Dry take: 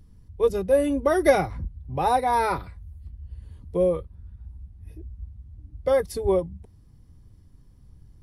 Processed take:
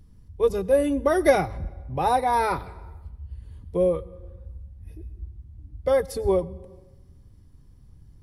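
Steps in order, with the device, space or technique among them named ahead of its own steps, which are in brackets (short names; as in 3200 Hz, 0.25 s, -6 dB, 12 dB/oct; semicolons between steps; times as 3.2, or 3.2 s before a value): compressed reverb return (on a send at -11 dB: reverb RT60 0.90 s, pre-delay 86 ms + compressor 6:1, threshold -29 dBFS, peak gain reduction 15.5 dB)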